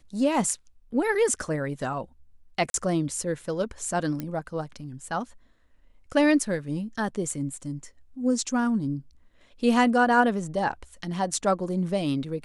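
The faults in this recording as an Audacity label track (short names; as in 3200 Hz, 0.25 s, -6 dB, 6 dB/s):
2.700000	2.740000	gap 42 ms
4.200000	4.200000	pop -18 dBFS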